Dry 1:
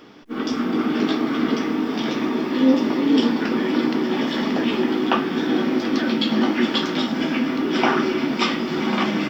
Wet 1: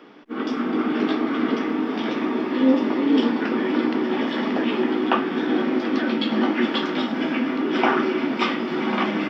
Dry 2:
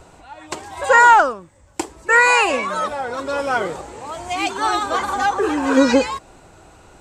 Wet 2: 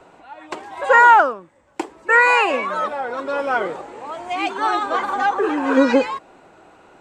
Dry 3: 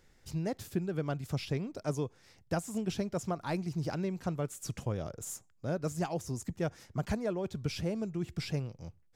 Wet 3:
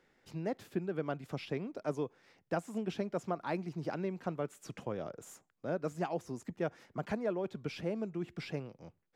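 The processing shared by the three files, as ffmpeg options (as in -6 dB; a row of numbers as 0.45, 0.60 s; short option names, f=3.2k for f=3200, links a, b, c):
-filter_complex "[0:a]acrossover=split=180 3400:gain=0.126 1 0.224[a][b][c];[a][b][c]amix=inputs=3:normalize=0"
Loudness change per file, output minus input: -1.5, -0.5, -2.5 LU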